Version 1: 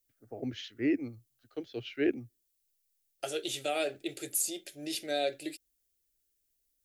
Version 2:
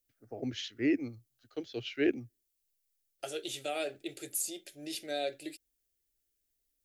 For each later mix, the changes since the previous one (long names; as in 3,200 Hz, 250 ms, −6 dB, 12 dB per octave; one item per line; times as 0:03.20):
first voice: remove low-pass filter 3,000 Hz 6 dB per octave
second voice −3.5 dB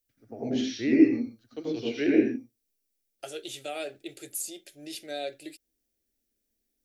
reverb: on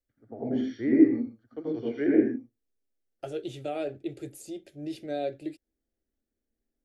first voice: add Savitzky-Golay smoothing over 41 samples
second voice: add spectral tilt −4.5 dB per octave